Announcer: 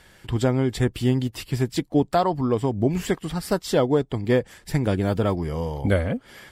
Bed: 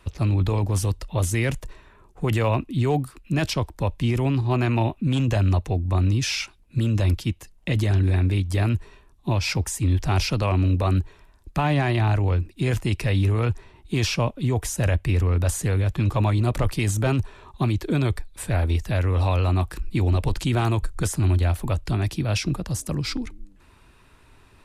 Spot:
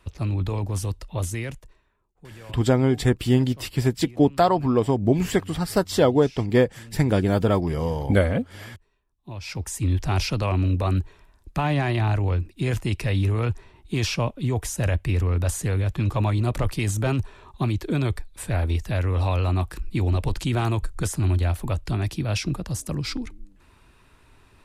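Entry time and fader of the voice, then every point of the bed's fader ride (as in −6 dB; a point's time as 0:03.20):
2.25 s, +2.0 dB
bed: 0:01.26 −4 dB
0:02.10 −22 dB
0:09.04 −22 dB
0:09.77 −1.5 dB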